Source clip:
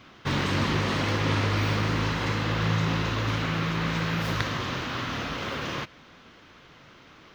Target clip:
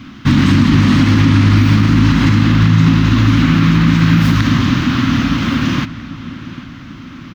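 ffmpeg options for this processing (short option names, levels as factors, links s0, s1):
-filter_complex "[0:a]firequalizer=gain_entry='entry(160,0);entry(260,7);entry(420,-19);entry(1200,-8)':delay=0.05:min_phase=1,asplit=2[s0][s1];[s1]adelay=797,lowpass=f=4200:p=1,volume=0.15,asplit=2[s2][s3];[s3]adelay=797,lowpass=f=4200:p=1,volume=0.54,asplit=2[s4][s5];[s5]adelay=797,lowpass=f=4200:p=1,volume=0.54,asplit=2[s6][s7];[s7]adelay=797,lowpass=f=4200:p=1,volume=0.54,asplit=2[s8][s9];[s9]adelay=797,lowpass=f=4200:p=1,volume=0.54[s10];[s2][s4][s6][s8][s10]amix=inputs=5:normalize=0[s11];[s0][s11]amix=inputs=2:normalize=0,alimiter=level_in=10:limit=0.891:release=50:level=0:latency=1,volume=0.891"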